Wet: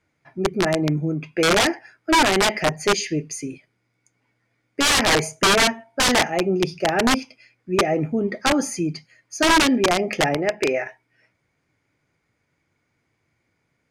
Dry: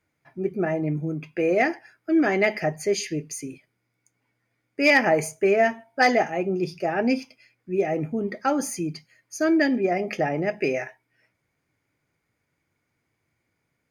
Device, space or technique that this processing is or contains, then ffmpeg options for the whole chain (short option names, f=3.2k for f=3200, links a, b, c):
overflowing digital effects unit: -filter_complex "[0:a]asettb=1/sr,asplit=3[a][b][c];[a]atrim=end=10.374[d];[b]atrim=start=10.37:end=10.86,asetpts=PTS-STARTPTS,afade=t=in:d=0.004:c=qsin,afade=t=out:st=0.486:d=0.004:c=qsin,bass=f=250:g=-9,treble=f=4k:g=-10[e];[c]atrim=start=10.856[f];[d][e]acrossfade=d=0.004:c1=hsin:c2=qsin[g];[g][f]acrossfade=d=0.004:c1=qsin:c2=hsin,aeval=exprs='(mod(5.96*val(0)+1,2)-1)/5.96':c=same,lowpass=8.1k,volume=4.5dB"